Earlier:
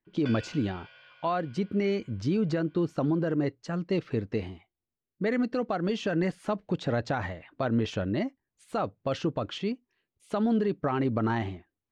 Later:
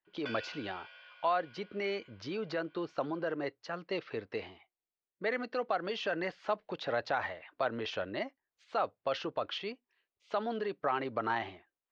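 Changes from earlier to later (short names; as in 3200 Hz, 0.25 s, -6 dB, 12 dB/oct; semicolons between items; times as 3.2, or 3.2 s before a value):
speech: add LPF 5600 Hz 24 dB/oct; master: add three-band isolator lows -19 dB, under 460 Hz, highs -17 dB, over 7000 Hz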